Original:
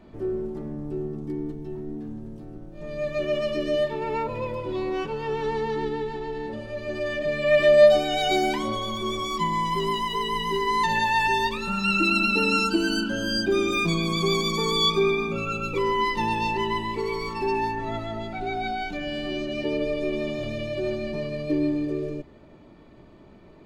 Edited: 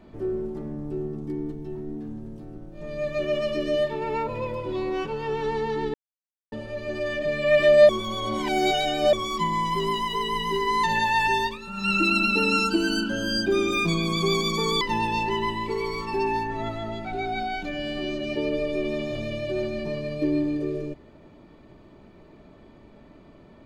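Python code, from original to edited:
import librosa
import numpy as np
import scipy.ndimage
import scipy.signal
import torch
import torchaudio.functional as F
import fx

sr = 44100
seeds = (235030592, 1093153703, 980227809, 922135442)

y = fx.edit(x, sr, fx.silence(start_s=5.94, length_s=0.58),
    fx.reverse_span(start_s=7.89, length_s=1.24),
    fx.fade_down_up(start_s=11.33, length_s=0.65, db=-9.0, fade_s=0.25, curve='qsin'),
    fx.cut(start_s=14.81, length_s=1.28), tone=tone)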